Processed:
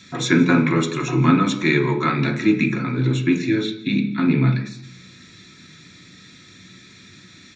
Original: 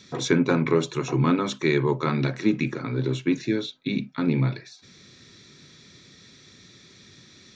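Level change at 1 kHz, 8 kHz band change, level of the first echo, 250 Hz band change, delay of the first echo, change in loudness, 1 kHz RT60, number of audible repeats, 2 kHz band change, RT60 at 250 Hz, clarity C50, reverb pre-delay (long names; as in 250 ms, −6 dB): +6.0 dB, can't be measured, −22.0 dB, +6.0 dB, 171 ms, +5.5 dB, 0.70 s, 1, +8.0 dB, 0.90 s, 11.0 dB, 3 ms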